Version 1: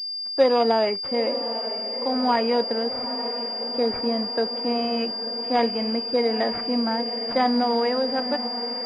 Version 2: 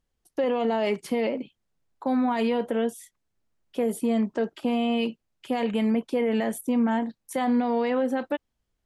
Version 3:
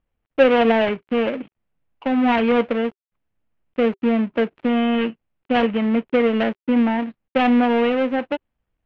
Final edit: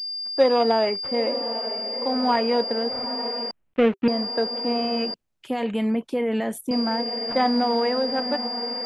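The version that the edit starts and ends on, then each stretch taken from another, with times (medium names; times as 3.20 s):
1
3.51–4.08 s: from 3
5.14–6.71 s: from 2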